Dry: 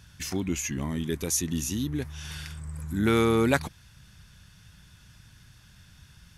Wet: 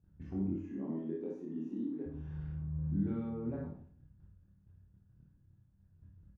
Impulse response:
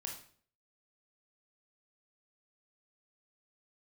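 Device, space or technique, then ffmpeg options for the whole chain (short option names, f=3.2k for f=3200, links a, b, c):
television next door: -filter_complex "[0:a]asettb=1/sr,asplit=3[a][b][c];[a]atrim=end=0.514[d];[b]atrim=start=0.51:end=2.06,asetpts=PTS-STARTPTS,afade=t=in:d=0.004:c=qsin,afade=t=out:st=1.546:d=0.004:c=qsin,highpass=f=240:w=0.5412,highpass=f=240:w=1.3066[e];[c]atrim=start=2.056[f];[d][e]acrossfade=d=0.004:c1=hsin:c2=qsin[g];[g][f]acrossfade=d=0.004:c1=qsin:c2=hsin,agate=range=-13dB:threshold=-50dB:ratio=16:detection=peak,acompressor=threshold=-31dB:ratio=6,lowpass=470[h];[1:a]atrim=start_sample=2205[i];[h][i]afir=irnorm=-1:irlink=0,asettb=1/sr,asplit=3[j][k][l];[j]atrim=end=2.844[m];[k]atrim=start=2.84:end=3.3,asetpts=PTS-STARTPTS,afade=t=in:d=0.004:c=qsin,afade=t=out:st=0.456:d=0.004:c=qsin,equalizer=f=3.8k:t=o:w=1.5:g=9[n];[l]atrim=start=3.296[o];[m][n]acrossfade=d=0.004:c1=hsin:c2=qsin[p];[p][o]acrossfade=d=0.004:c1=qsin:c2=hsin,aecho=1:1:25|56:0.668|0.562,volume=-1.5dB"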